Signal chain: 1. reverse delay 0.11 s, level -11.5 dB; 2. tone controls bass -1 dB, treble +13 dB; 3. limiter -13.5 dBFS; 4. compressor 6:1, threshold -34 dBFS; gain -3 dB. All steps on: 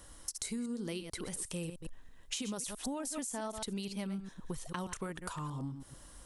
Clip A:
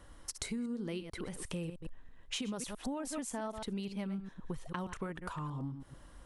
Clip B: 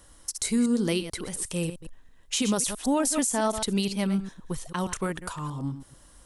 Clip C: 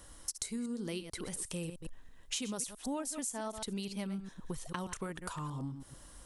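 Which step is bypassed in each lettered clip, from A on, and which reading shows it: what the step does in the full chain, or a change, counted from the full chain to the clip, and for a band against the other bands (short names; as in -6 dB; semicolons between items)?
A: 2, 8 kHz band -5.5 dB; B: 4, mean gain reduction 8.0 dB; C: 3, crest factor change +3.0 dB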